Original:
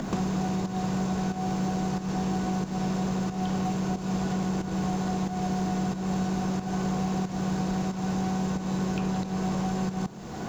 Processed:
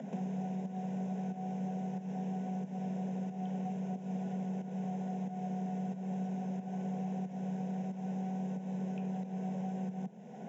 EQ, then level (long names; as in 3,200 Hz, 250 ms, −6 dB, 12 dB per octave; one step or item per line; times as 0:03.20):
moving average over 10 samples
Butterworth high-pass 160 Hz
phaser with its sweep stopped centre 320 Hz, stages 6
−7.5 dB